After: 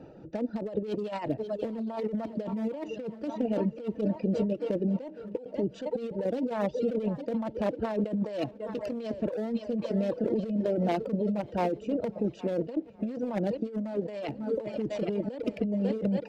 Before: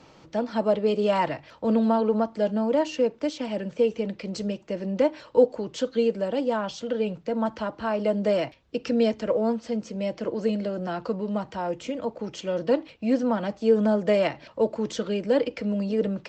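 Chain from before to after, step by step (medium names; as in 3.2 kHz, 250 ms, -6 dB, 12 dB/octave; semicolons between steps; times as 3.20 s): local Wiener filter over 41 samples; bass shelf 190 Hz -7.5 dB; multi-head delay 273 ms, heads second and third, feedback 54%, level -19.5 dB; reverb removal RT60 0.64 s; compressor with a negative ratio -35 dBFS, ratio -1; dynamic bell 1.4 kHz, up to -6 dB, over -55 dBFS, Q 1.5; trim +4.5 dB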